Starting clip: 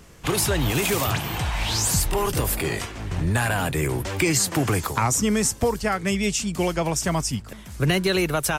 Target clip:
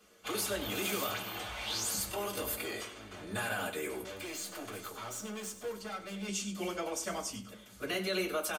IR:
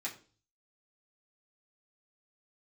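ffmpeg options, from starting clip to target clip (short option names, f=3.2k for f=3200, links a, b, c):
-filter_complex "[0:a]asettb=1/sr,asplit=3[a][b][c];[a]atrim=end=4.014[d];[b]atrim=start=4.01:end=6.28,asetpts=PTS-STARTPTS,afade=t=in:d=0.004:c=qsin,afade=t=out:st=2.266:d=0.004:c=qsin,aeval=exprs='(tanh(22.4*val(0)+0.35)-tanh(0.35))/22.4':c=same[e];[c]atrim=start=6.276[f];[d][e]acrossfade=d=0.004:c1=hsin:c2=qsin[g];[g][f]acrossfade=d=0.004:c1=qsin:c2=hsin,aecho=1:1:96|192|288:0.224|0.0582|0.0151[h];[1:a]atrim=start_sample=2205,asetrate=79380,aresample=44100[i];[h][i]afir=irnorm=-1:irlink=0,volume=-6dB"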